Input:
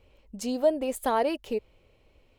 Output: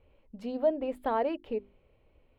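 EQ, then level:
high-frequency loss of the air 430 metres
high-shelf EQ 9,600 Hz +9.5 dB
mains-hum notches 50/100/150/200/250/300/350/400 Hz
−2.0 dB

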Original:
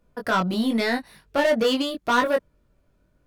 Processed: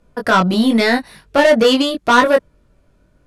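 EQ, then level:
low-pass filter 12,000 Hz 24 dB per octave
+9.0 dB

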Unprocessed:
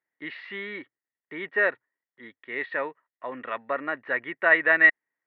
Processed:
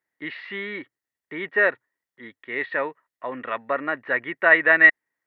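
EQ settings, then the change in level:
parametric band 85 Hz +3.5 dB 2.2 octaves
+3.5 dB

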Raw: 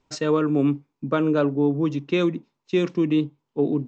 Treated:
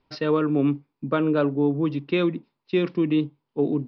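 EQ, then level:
elliptic low-pass filter 4,900 Hz, stop band 40 dB
0.0 dB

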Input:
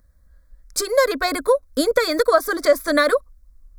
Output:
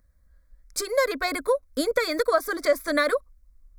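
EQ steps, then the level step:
parametric band 2,200 Hz +5.5 dB 0.35 octaves
−6.0 dB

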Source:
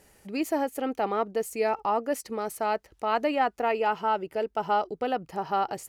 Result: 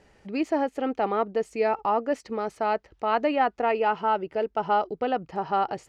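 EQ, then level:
high-frequency loss of the air 140 metres
+2.5 dB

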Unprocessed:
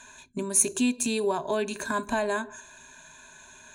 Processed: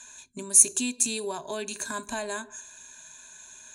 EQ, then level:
parametric band 7,800 Hz +13.5 dB 2.2 octaves
−7.0 dB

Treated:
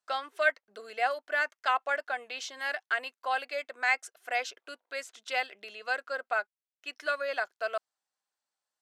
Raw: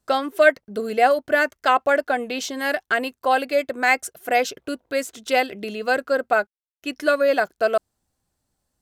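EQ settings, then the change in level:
high-pass filter 920 Hz 12 dB per octave
high-frequency loss of the air 61 metres
−6.5 dB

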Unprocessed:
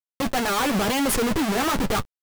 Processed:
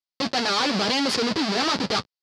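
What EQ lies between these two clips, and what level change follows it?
high-pass filter 150 Hz 12 dB per octave
low-pass with resonance 4,700 Hz, resonance Q 4.3
−1.5 dB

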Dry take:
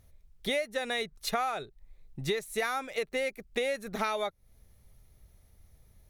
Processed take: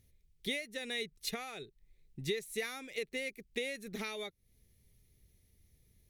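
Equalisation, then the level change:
low-shelf EQ 67 Hz −9 dB
flat-topped bell 930 Hz −12.5 dB
−3.5 dB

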